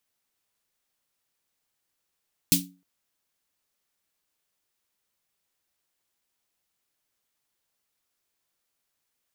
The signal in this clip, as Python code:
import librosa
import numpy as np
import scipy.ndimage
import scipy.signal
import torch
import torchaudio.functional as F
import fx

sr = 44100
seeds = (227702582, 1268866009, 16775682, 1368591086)

y = fx.drum_snare(sr, seeds[0], length_s=0.31, hz=180.0, second_hz=280.0, noise_db=6.5, noise_from_hz=2800.0, decay_s=0.36, noise_decay_s=0.2)